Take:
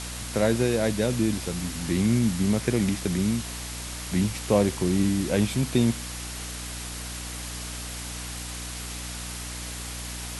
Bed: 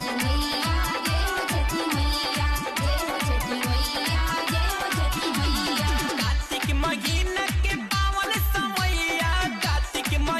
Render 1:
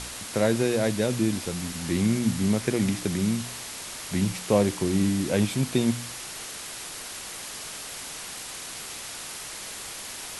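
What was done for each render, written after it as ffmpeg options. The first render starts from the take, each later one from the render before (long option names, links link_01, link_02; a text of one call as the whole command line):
ffmpeg -i in.wav -af "bandreject=frequency=60:width_type=h:width=4,bandreject=frequency=120:width_type=h:width=4,bandreject=frequency=180:width_type=h:width=4,bandreject=frequency=240:width_type=h:width=4,bandreject=frequency=300:width_type=h:width=4" out.wav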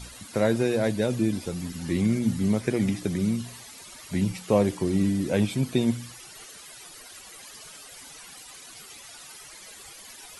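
ffmpeg -i in.wav -af "afftdn=noise_reduction=14:noise_floor=-38" out.wav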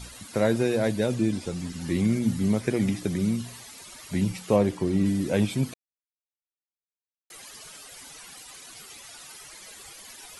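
ffmpeg -i in.wav -filter_complex "[0:a]asettb=1/sr,asplit=3[link_01][link_02][link_03];[link_01]atrim=end=1.144[link_04];[link_02]atrim=start=1.14:end=1.8,asetpts=PTS-STARTPTS,afade=type=in:duration=0.004:curve=qsin,afade=type=out:start_time=0.656:duration=0.004:curve=qsin,lowpass=frequency=9800:width=0.5412,lowpass=frequency=9800:width=1.3066[link_05];[link_03]atrim=start=1.796[link_06];[link_04][link_05]acrossfade=duration=0.004:curve1=hsin:curve2=qsin[link_07];[link_07][link_06]acrossfade=duration=0.004:curve1=qsin:curve2=hsin,asettb=1/sr,asplit=3[link_08][link_09][link_10];[link_08]atrim=end=4.564[link_11];[link_09]atrim=start=4.56:end=5.06,asetpts=PTS-STARTPTS,afade=type=in:duration=0.004:curve=qsin,afade=type=out:start_time=0.496:duration=0.004:curve=qsin,highshelf=frequency=5200:gain=-7.5[link_12];[link_10]atrim=start=5.056[link_13];[link_11][link_12]acrossfade=duration=0.004:curve1=hsin:curve2=qsin[link_14];[link_14][link_13]acrossfade=duration=0.004:curve1=qsin:curve2=hsin,asplit=3[link_15][link_16][link_17];[link_15]atrim=end=5.74,asetpts=PTS-STARTPTS,afade=type=out:start_time=5.736:duration=0.004:curve=hsin[link_18];[link_16]atrim=start=5.74:end=7.3,asetpts=PTS-STARTPTS,volume=0[link_19];[link_17]atrim=start=7.3,asetpts=PTS-STARTPTS,afade=type=in:duration=0.004:curve=hsin[link_20];[link_18][link_19][link_20]concat=n=3:v=0:a=1" out.wav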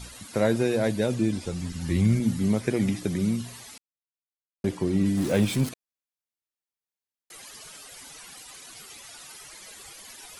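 ffmpeg -i in.wav -filter_complex "[0:a]asettb=1/sr,asplit=3[link_01][link_02][link_03];[link_01]atrim=end=1.214[link_04];[link_02]atrim=start=1.21:end=2.2,asetpts=PTS-STARTPTS,afade=type=in:duration=0.004:curve=qsin,afade=type=out:start_time=0.986:duration=0.004:curve=qsin,asubboost=boost=11.5:cutoff=130[link_05];[link_03]atrim=start=2.196[link_06];[link_04][link_05]acrossfade=duration=0.004:curve1=hsin:curve2=qsin[link_07];[link_07][link_06]acrossfade=duration=0.004:curve1=qsin:curve2=hsin,asettb=1/sr,asplit=3[link_08][link_09][link_10];[link_08]atrim=end=5.174[link_11];[link_09]atrim=start=5.17:end=5.69,asetpts=PTS-STARTPTS,afade=type=in:duration=0.004:curve=qsin,afade=type=out:start_time=0.516:duration=0.004:curve=qsin,aeval=exprs='val(0)+0.5*0.0266*sgn(val(0))':channel_layout=same[link_12];[link_10]atrim=start=5.686[link_13];[link_11][link_12]acrossfade=duration=0.004:curve1=hsin:curve2=qsin[link_14];[link_14][link_13]acrossfade=duration=0.004:curve1=qsin:curve2=hsin,asplit=3[link_15][link_16][link_17];[link_15]atrim=end=3.78,asetpts=PTS-STARTPTS,afade=type=out:start_time=3.776:duration=0.004:curve=hsin[link_18];[link_16]atrim=start=3.78:end=4.64,asetpts=PTS-STARTPTS,volume=0[link_19];[link_17]atrim=start=4.64,asetpts=PTS-STARTPTS,afade=type=in:duration=0.004:curve=hsin[link_20];[link_18][link_19][link_20]concat=n=3:v=0:a=1" out.wav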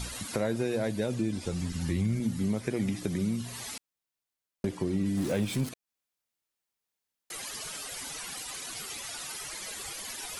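ffmpeg -i in.wav -filter_complex "[0:a]asplit=2[link_01][link_02];[link_02]alimiter=limit=-19dB:level=0:latency=1:release=413,volume=0dB[link_03];[link_01][link_03]amix=inputs=2:normalize=0,acompressor=threshold=-34dB:ratio=2" out.wav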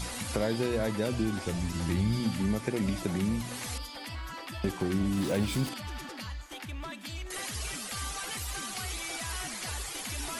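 ffmpeg -i in.wav -i bed.wav -filter_complex "[1:a]volume=-15.5dB[link_01];[0:a][link_01]amix=inputs=2:normalize=0" out.wav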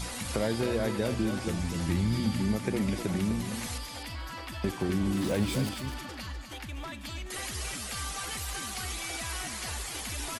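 ffmpeg -i in.wav -af "aecho=1:1:251:0.376" out.wav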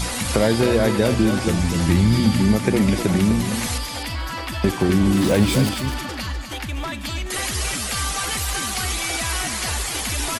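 ffmpeg -i in.wav -af "volume=11.5dB" out.wav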